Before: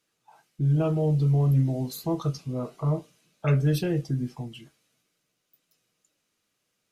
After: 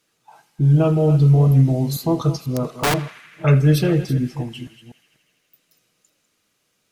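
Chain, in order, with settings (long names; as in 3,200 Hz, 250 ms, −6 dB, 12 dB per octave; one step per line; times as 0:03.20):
delay that plays each chunk backwards 246 ms, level −12.5 dB
0:02.38–0:02.94: wrap-around overflow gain 22 dB
feedback echo with a band-pass in the loop 81 ms, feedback 85%, band-pass 2,100 Hz, level −16 dB
level +8 dB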